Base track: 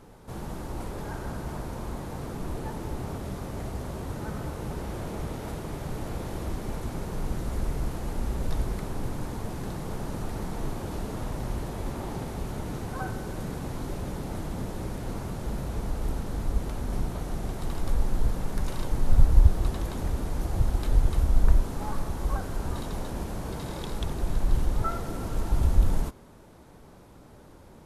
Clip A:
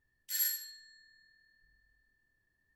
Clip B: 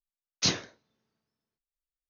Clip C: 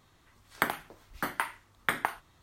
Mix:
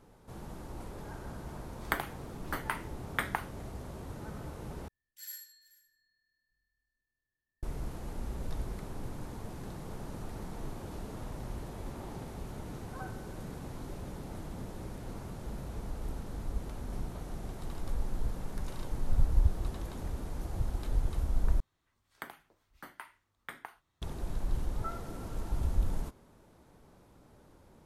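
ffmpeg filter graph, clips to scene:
ffmpeg -i bed.wav -i cue0.wav -i cue1.wav -i cue2.wav -filter_complex "[3:a]asplit=2[link_01][link_02];[0:a]volume=-8.5dB[link_03];[1:a]aecho=1:1:434:0.0944[link_04];[link_03]asplit=3[link_05][link_06][link_07];[link_05]atrim=end=4.884[link_08];[link_04]atrim=end=2.75,asetpts=PTS-STARTPTS,volume=-12.5dB[link_09];[link_06]atrim=start=7.626:end=21.604[link_10];[link_02]atrim=end=2.42,asetpts=PTS-STARTPTS,volume=-16dB[link_11];[link_07]atrim=start=24.016[link_12];[link_01]atrim=end=2.42,asetpts=PTS-STARTPTS,volume=-4dB,afade=type=in:duration=0.004:curve=hsin,afade=type=out:start_time=2.416:duration=0.004:curve=hsin,adelay=1300[link_13];[link_08][link_09]acrossfade=duration=0.004:curve1=hsin:curve2=hsin[link_14];[link_14][link_10]acrossfade=duration=0.004:curve1=hsin:curve2=hsin[link_15];[link_15][link_11]acrossfade=duration=0.004:curve1=hsin:curve2=hsin[link_16];[link_16][link_12]acrossfade=duration=0.004:curve1=hsin:curve2=hsin[link_17];[link_17][link_13]amix=inputs=2:normalize=0" out.wav

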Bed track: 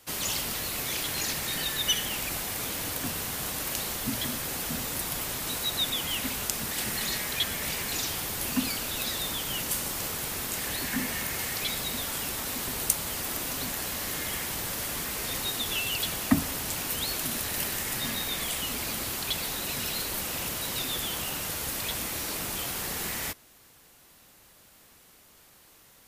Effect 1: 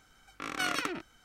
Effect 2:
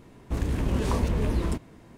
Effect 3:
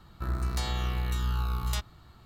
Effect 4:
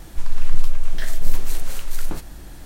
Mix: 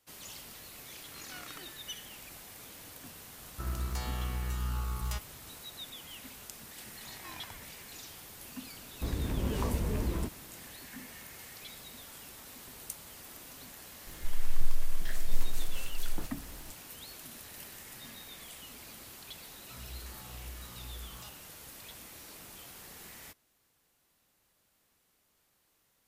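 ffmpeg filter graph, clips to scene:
ffmpeg -i bed.wav -i cue0.wav -i cue1.wav -i cue2.wav -i cue3.wav -filter_complex "[1:a]asplit=2[link_01][link_02];[3:a]asplit=2[link_03][link_04];[0:a]volume=-16.5dB[link_05];[link_03]equalizer=frequency=3700:width=3.9:gain=-8[link_06];[link_02]afreqshift=-400[link_07];[link_04]asplit=2[link_08][link_09];[link_09]afreqshift=-2[link_10];[link_08][link_10]amix=inputs=2:normalize=1[link_11];[link_01]atrim=end=1.24,asetpts=PTS-STARTPTS,volume=-16.5dB,afade=type=in:duration=0.004:curve=hsin,afade=type=out:start_time=1.236:duration=0.004:curve=hsin,adelay=720[link_12];[link_06]atrim=end=2.25,asetpts=PTS-STARTPTS,volume=-5dB,afade=type=in:duration=0.004:curve=hsin,afade=type=out:start_time=2.246:duration=0.004:curve=hsin,adelay=3380[link_13];[link_07]atrim=end=1.24,asetpts=PTS-STARTPTS,volume=-16dB,afade=type=in:duration=0.004:curve=hsin,afade=type=out:start_time=1.236:duration=0.004:curve=hsin,adelay=6650[link_14];[2:a]atrim=end=1.97,asetpts=PTS-STARTPTS,volume=-6.5dB,afade=type=in:duration=0.004:curve=hsin,afade=type=out:start_time=1.966:duration=0.004:curve=hsin,adelay=8710[link_15];[4:a]atrim=end=2.65,asetpts=PTS-STARTPTS,volume=-10dB,afade=type=in:duration=0.004:curve=hsin,afade=type=out:start_time=2.646:duration=0.004:curve=hsin,adelay=14070[link_16];[link_11]atrim=end=2.25,asetpts=PTS-STARTPTS,volume=-14.5dB,afade=type=in:duration=0.004:curve=hsin,afade=type=out:start_time=2.246:duration=0.004:curve=hsin,adelay=19490[link_17];[link_05][link_12][link_13][link_14][link_15][link_16][link_17]amix=inputs=7:normalize=0" out.wav

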